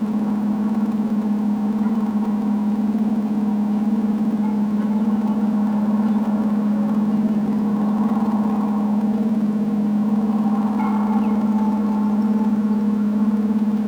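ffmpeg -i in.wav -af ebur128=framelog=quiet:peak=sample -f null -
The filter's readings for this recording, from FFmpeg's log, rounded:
Integrated loudness:
  I:         -19.8 LUFS
  Threshold: -29.8 LUFS
Loudness range:
  LRA:         1.2 LU
  Threshold: -39.8 LUFS
  LRA low:   -20.4 LUFS
  LRA high:  -19.3 LUFS
Sample peak:
  Peak:       -9.3 dBFS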